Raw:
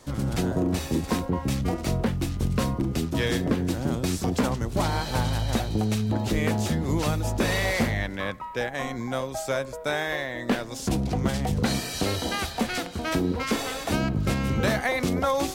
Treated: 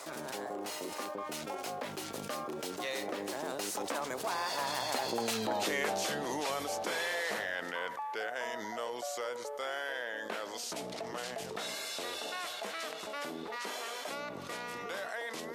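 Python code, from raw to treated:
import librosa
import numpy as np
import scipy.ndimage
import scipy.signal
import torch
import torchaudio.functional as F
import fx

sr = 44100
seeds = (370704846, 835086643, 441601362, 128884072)

y = fx.doppler_pass(x, sr, speed_mps=38, closest_m=12.0, pass_at_s=5.49)
y = scipy.signal.sosfilt(scipy.signal.cheby1(2, 1.0, 610.0, 'highpass', fs=sr, output='sos'), y)
y = fx.env_flatten(y, sr, amount_pct=70)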